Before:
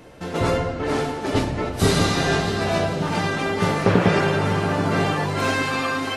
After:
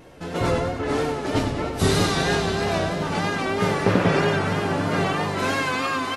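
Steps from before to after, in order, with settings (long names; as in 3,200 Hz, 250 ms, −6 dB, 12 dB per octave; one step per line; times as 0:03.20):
repeating echo 96 ms, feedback 57%, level −8 dB
pitch vibrato 3.1 Hz 55 cents
level −2 dB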